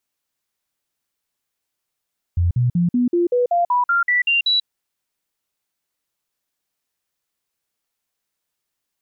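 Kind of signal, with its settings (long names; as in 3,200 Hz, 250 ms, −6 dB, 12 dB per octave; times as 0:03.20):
stepped sweep 86.8 Hz up, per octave 2, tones 12, 0.14 s, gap 0.05 s −14 dBFS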